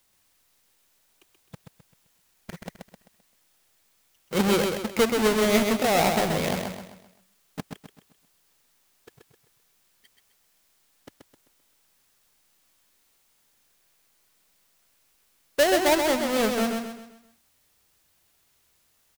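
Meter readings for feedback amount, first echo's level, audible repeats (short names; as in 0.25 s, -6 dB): 40%, -5.0 dB, 4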